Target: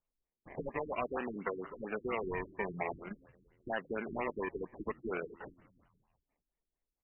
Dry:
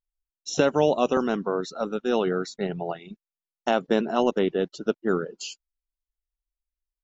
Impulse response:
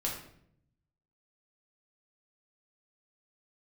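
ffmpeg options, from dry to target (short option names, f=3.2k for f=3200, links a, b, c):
-filter_complex "[0:a]acompressor=threshold=-37dB:ratio=2.5,lowshelf=f=330:g=-11.5,aresample=8000,asoftclip=type=tanh:threshold=-34.5dB,aresample=44100,acrossover=split=510|1500[a][b][c];[a]acompressor=threshold=-45dB:ratio=4[d];[b]acompressor=threshold=-44dB:ratio=4[e];[c]acompressor=threshold=-59dB:ratio=4[f];[d][e][f]amix=inputs=3:normalize=0,asplit=6[g][h][i][j][k][l];[h]adelay=177,afreqshift=-79,volume=-22.5dB[m];[i]adelay=354,afreqshift=-158,volume=-26.7dB[n];[j]adelay=531,afreqshift=-237,volume=-30.8dB[o];[k]adelay=708,afreqshift=-316,volume=-35dB[p];[l]adelay=885,afreqshift=-395,volume=-39.1dB[q];[g][m][n][o][p][q]amix=inputs=6:normalize=0,acrusher=samples=25:mix=1:aa=0.000001:lfo=1:lforange=15:lforate=0.49,equalizer=f=1.9k:w=0.98:g=8.5,afftfilt=real='re*lt(b*sr/1024,380*pow(3100/380,0.5+0.5*sin(2*PI*4.3*pts/sr)))':imag='im*lt(b*sr/1024,380*pow(3100/380,0.5+0.5*sin(2*PI*4.3*pts/sr)))':win_size=1024:overlap=0.75,volume=7dB"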